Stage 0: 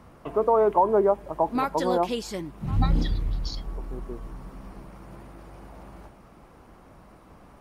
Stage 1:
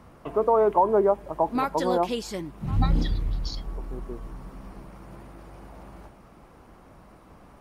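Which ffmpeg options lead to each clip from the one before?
-af anull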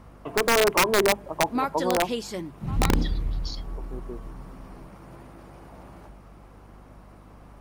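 -af "aeval=exprs='(mod(4.47*val(0)+1,2)-1)/4.47':c=same,bandreject=f=50:t=h:w=6,bandreject=f=100:t=h:w=6,bandreject=f=150:t=h:w=6,bandreject=f=200:t=h:w=6,aeval=exprs='val(0)+0.00355*(sin(2*PI*50*n/s)+sin(2*PI*2*50*n/s)/2+sin(2*PI*3*50*n/s)/3+sin(2*PI*4*50*n/s)/4+sin(2*PI*5*50*n/s)/5)':c=same"

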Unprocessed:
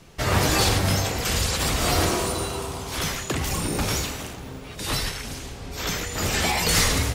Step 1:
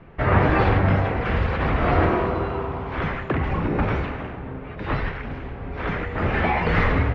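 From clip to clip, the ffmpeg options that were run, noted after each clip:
-af "lowpass=f=2.1k:w=0.5412,lowpass=f=2.1k:w=1.3066,volume=4dB"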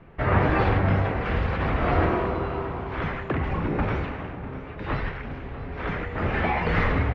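-af "aecho=1:1:646:0.168,volume=-3dB"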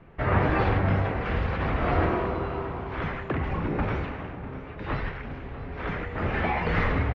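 -af "aresample=16000,aresample=44100,volume=-2dB"

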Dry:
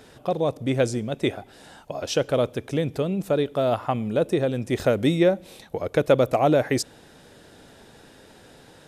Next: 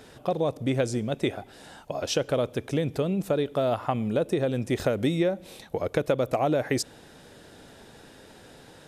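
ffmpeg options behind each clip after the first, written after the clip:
-af "acompressor=threshold=-21dB:ratio=5"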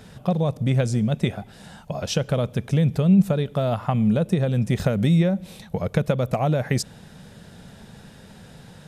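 -af "lowshelf=f=240:t=q:w=3:g=6.5,volume=1.5dB"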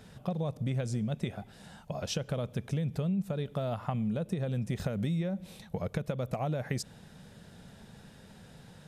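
-af "acompressor=threshold=-21dB:ratio=5,volume=-7.5dB"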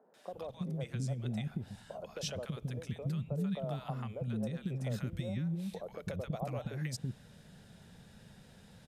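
-filter_complex "[0:a]acrossover=split=330|1000[a][b][c];[c]adelay=140[d];[a]adelay=330[e];[e][b][d]amix=inputs=3:normalize=0,volume=-3.5dB"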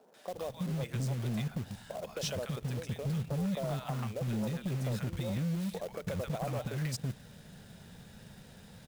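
-af "acrusher=bits=3:mode=log:mix=0:aa=0.000001,volume=33.5dB,asoftclip=hard,volume=-33.5dB,volume=4dB"

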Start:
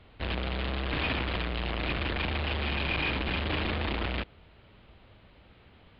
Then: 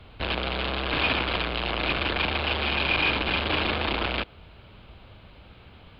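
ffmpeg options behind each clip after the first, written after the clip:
-filter_complex "[0:a]equalizer=f=1.9k:w=7.9:g=-8,acrossover=split=220[a][b];[a]acompressor=threshold=-41dB:ratio=6[c];[b]lowshelf=f=390:g=-6[d];[c][d]amix=inputs=2:normalize=0,volume=8dB"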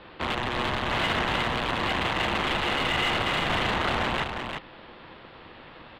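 -filter_complex "[0:a]asplit=2[a][b];[b]highpass=f=720:p=1,volume=19dB,asoftclip=type=tanh:threshold=-11.5dB[c];[a][c]amix=inputs=2:normalize=0,lowpass=f=1.3k:p=1,volume=-6dB,aeval=exprs='val(0)*sin(2*PI*420*n/s)':c=same,asplit=2[d][e];[e]aecho=0:1:350:0.531[f];[d][f]amix=inputs=2:normalize=0"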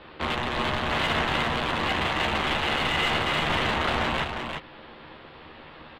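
-filter_complex "[0:a]asplit=2[a][b];[b]adelay=13,volume=-7dB[c];[a][c]amix=inputs=2:normalize=0"

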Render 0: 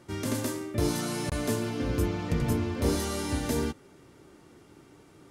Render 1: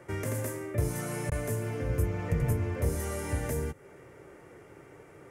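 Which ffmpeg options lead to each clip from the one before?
-filter_complex "[0:a]equalizer=f=125:t=o:w=1:g=4,equalizer=f=250:t=o:w=1:g=-7,equalizer=f=500:t=o:w=1:g=10,equalizer=f=2k:t=o:w=1:g=10,equalizer=f=4k:t=o:w=1:g=-12,acrossover=split=190|6400[a][b][c];[b]acompressor=threshold=-35dB:ratio=6[d];[a][d][c]amix=inputs=3:normalize=0"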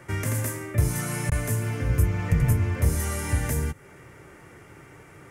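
-af "equalizer=f=480:w=0.92:g=-9.5,volume=8dB"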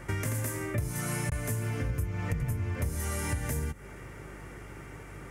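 -af "aeval=exprs='val(0)+0.00355*(sin(2*PI*50*n/s)+sin(2*PI*2*50*n/s)/2+sin(2*PI*3*50*n/s)/3+sin(2*PI*4*50*n/s)/4+sin(2*PI*5*50*n/s)/5)':c=same,acompressor=threshold=-30dB:ratio=6,volume=1.5dB"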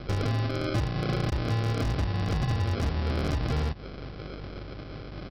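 -af "aresample=11025,acrusher=samples=12:mix=1:aa=0.000001,aresample=44100,aeval=exprs='0.0473*(abs(mod(val(0)/0.0473+3,4)-2)-1)':c=same,volume=5.5dB"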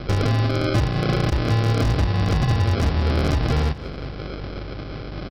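-af "aecho=1:1:182|364|546|728:0.126|0.0604|0.029|0.0139,volume=7.5dB"

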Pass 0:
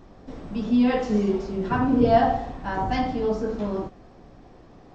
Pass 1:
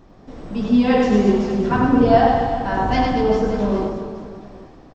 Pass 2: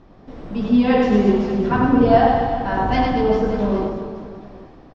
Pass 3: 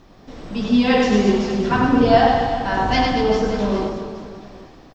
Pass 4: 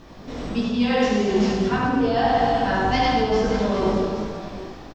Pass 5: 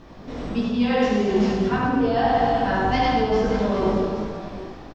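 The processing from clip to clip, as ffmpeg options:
-af "dynaudnorm=f=140:g=7:m=5.5dB,aecho=1:1:100|225|381.2|576.6|820.7:0.631|0.398|0.251|0.158|0.1"
-af "lowpass=4.6k"
-af "crystalizer=i=5:c=0,volume=-1dB"
-af "areverse,acompressor=threshold=-23dB:ratio=6,areverse,flanger=delay=17:depth=4.5:speed=1.6,aecho=1:1:71:0.531,volume=7.5dB"
-af "highshelf=f=4k:g=-7.5"

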